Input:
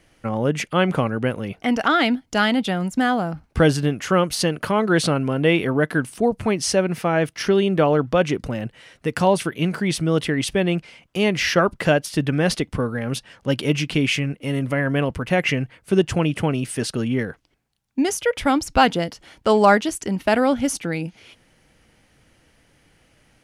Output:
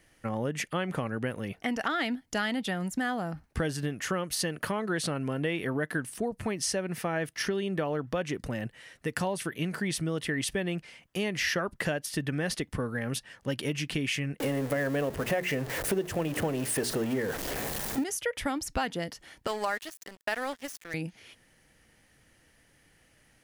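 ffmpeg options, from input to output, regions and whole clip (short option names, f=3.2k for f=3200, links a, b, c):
-filter_complex "[0:a]asettb=1/sr,asplit=3[a][b][c];[a]atrim=end=14.404[d];[b]atrim=start=14.4:end=18.04,asetpts=PTS-STARTPTS,afade=t=in:d=0.004:c=qsin,afade=t=out:st=3.636:d=0.004:c=qsin,aeval=exprs='val(0)+0.5*0.0562*sgn(val(0))':c=same,equalizer=f=510:t=o:w=1.8:g=9.5,bandreject=f=60:t=h:w=6,bandreject=f=120:t=h:w=6,bandreject=f=180:t=h:w=6,bandreject=f=240:t=h:w=6,bandreject=f=300:t=h:w=6,bandreject=f=360:t=h:w=6,bandreject=f=420:t=h:w=6[e];[c]atrim=start=18.036[f];[d][e]acrossfade=d=0.004:c1=hsin:c2=qsin[g];[g][f]acrossfade=d=0.004:c1=qsin:c2=hsin,asettb=1/sr,asplit=3[h][i][j];[h]atrim=end=19.474[k];[i]atrim=start=19.47:end=20.94,asetpts=PTS-STARTPTS,afade=t=in:d=0.004:c=qsin,afade=t=out:st=1.466:d=0.004:c=qsin,acrossover=split=5700[l][m];[m]acompressor=threshold=-36dB:ratio=4:attack=1:release=60[n];[l][n]amix=inputs=2:normalize=0,highpass=f=840:p=1,aeval=exprs='sgn(val(0))*max(abs(val(0))-0.02,0)':c=same[o];[j]atrim=start=20.936[p];[k][o]acrossfade=d=0.004:c1=hsin:c2=qsin[q];[q][p]acrossfade=d=0.004:c1=qsin:c2=hsin,highshelf=f=7.6k:g=9.5,acompressor=threshold=-20dB:ratio=6,equalizer=f=1.8k:w=6.5:g=7.5,volume=-7dB"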